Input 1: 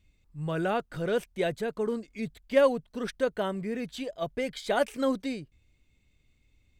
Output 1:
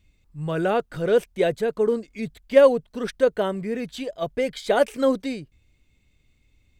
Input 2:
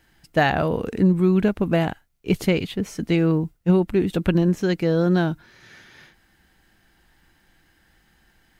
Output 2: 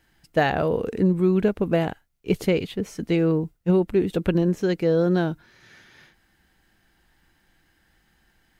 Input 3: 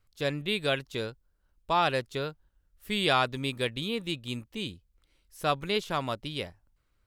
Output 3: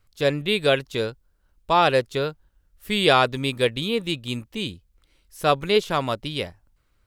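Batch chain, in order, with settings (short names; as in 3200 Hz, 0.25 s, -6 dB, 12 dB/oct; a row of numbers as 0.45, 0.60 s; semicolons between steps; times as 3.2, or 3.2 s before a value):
dynamic EQ 460 Hz, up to +6 dB, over -35 dBFS, Q 1.9; match loudness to -23 LUFS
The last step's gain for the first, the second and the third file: +4.0, -3.5, +6.5 dB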